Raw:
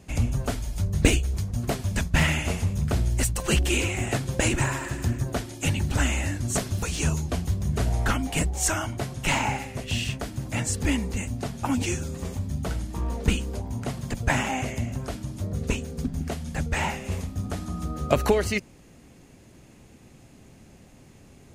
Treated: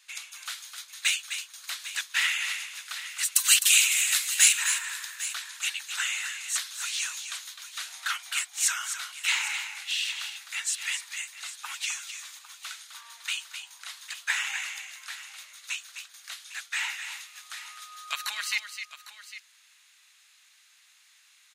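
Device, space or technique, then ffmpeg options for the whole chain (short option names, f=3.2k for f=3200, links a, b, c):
headphones lying on a table: -filter_complex "[0:a]highpass=930,highpass=f=1.3k:w=0.5412,highpass=f=1.3k:w=1.3066,equalizer=f=3.8k:t=o:w=0.39:g=8,asettb=1/sr,asplit=3[a][b][c];[a]atrim=end=3.324[d];[b]atrim=start=3.32:end=4.53,asetpts=PTS-STARTPTS,afade=t=in:d=0.004:c=qsin,afade=t=out:st=1.206:d=0.004:c=qsin,aemphasis=mode=production:type=75kf[e];[c]atrim=start=4.526[f];[d][e]acrossfade=d=0.004:c1=hsin:c2=qsin[g];[g][f]acrossfade=d=0.004:c1=qsin:c2=hsin,aecho=1:1:257|803:0.355|0.188"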